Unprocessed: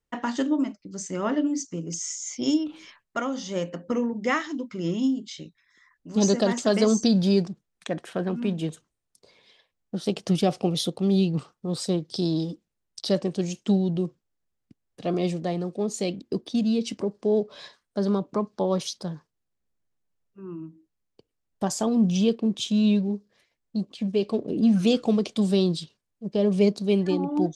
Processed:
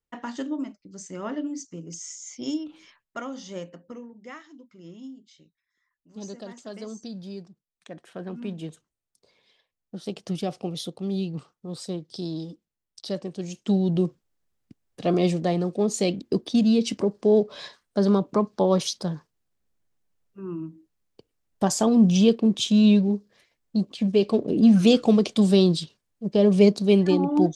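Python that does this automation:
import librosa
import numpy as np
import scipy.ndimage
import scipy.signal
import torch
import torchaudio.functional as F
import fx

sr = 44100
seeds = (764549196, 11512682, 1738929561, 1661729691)

y = fx.gain(x, sr, db=fx.line((3.53, -6.0), (4.09, -17.0), (7.43, -17.0), (8.38, -6.5), (13.37, -6.5), (13.99, 4.0)))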